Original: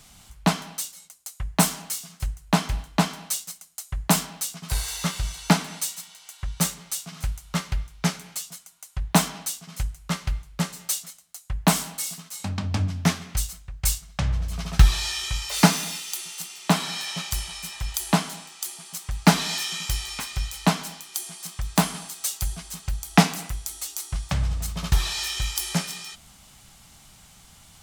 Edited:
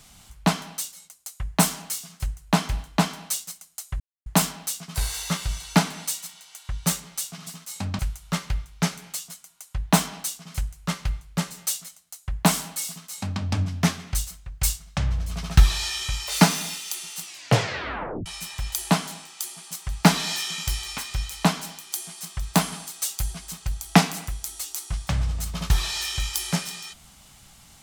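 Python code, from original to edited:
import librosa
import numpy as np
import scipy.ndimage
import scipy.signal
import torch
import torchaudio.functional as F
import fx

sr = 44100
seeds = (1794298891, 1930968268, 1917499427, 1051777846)

y = fx.edit(x, sr, fx.insert_silence(at_s=4.0, length_s=0.26),
    fx.duplicate(start_s=12.11, length_s=0.52, to_s=7.21),
    fx.tape_stop(start_s=16.45, length_s=1.03), tone=tone)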